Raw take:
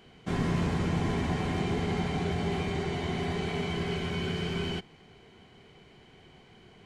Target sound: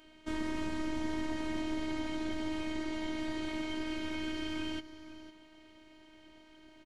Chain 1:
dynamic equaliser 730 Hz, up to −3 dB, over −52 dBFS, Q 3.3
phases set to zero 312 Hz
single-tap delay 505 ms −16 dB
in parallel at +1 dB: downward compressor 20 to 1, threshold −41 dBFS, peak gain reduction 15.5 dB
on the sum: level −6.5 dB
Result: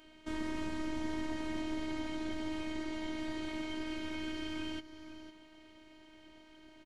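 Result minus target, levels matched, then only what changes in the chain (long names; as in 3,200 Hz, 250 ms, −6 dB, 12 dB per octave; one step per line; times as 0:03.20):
downward compressor: peak gain reduction +7.5 dB
change: downward compressor 20 to 1, threshold −33 dBFS, peak gain reduction 8 dB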